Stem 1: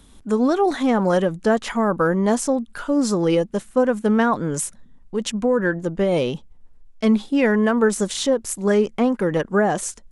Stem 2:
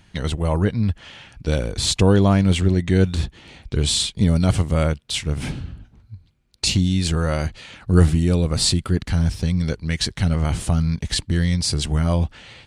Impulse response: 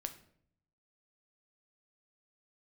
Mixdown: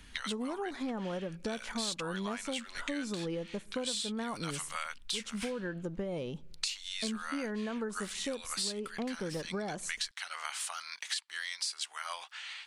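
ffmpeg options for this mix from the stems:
-filter_complex "[0:a]volume=-10.5dB,asplit=2[link_01][link_02];[link_02]volume=-15.5dB[link_03];[1:a]highpass=frequency=1100:width=0.5412,highpass=frequency=1100:width=1.3066,volume=0dB[link_04];[2:a]atrim=start_sample=2205[link_05];[link_03][link_05]afir=irnorm=-1:irlink=0[link_06];[link_01][link_04][link_06]amix=inputs=3:normalize=0,lowshelf=frequency=160:gain=6,acompressor=threshold=-34dB:ratio=6"

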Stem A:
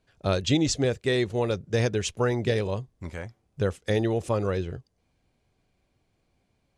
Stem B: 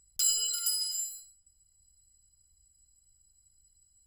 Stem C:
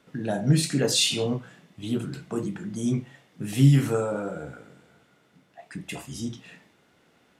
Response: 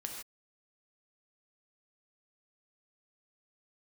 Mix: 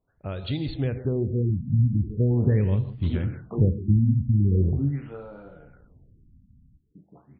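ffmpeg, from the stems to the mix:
-filter_complex "[0:a]asubboost=boost=9.5:cutoff=240,acompressor=threshold=-26dB:ratio=1.5,volume=-10dB,asplit=3[link_01][link_02][link_03];[link_02]volume=-3.5dB[link_04];[link_03]volume=-13.5dB[link_05];[2:a]adelay=1200,volume=-12.5dB,afade=type=in:start_time=2.71:duration=0.51:silence=0.298538,afade=type=out:start_time=4.69:duration=0.28:silence=0.298538,asplit=2[link_06][link_07];[link_07]volume=-8dB[link_08];[3:a]atrim=start_sample=2205[link_09];[link_04][link_08]amix=inputs=2:normalize=0[link_10];[link_10][link_09]afir=irnorm=-1:irlink=0[link_11];[link_05]aecho=0:1:161:1[link_12];[link_01][link_06][link_11][link_12]amix=inputs=4:normalize=0,dynaudnorm=framelen=330:gausssize=5:maxgain=7dB,afftfilt=real='re*lt(b*sr/1024,260*pow(4800/260,0.5+0.5*sin(2*PI*0.42*pts/sr)))':imag='im*lt(b*sr/1024,260*pow(4800/260,0.5+0.5*sin(2*PI*0.42*pts/sr)))':win_size=1024:overlap=0.75"

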